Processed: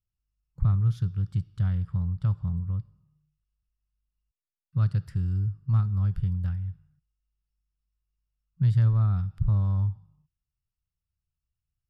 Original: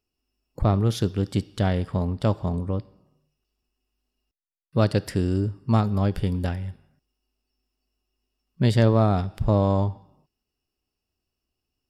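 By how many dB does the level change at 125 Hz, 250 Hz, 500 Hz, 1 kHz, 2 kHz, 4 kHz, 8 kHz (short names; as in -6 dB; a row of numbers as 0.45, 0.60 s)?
0.0 dB, -12.0 dB, under -25 dB, -16.5 dB, under -10 dB, under -15 dB, n/a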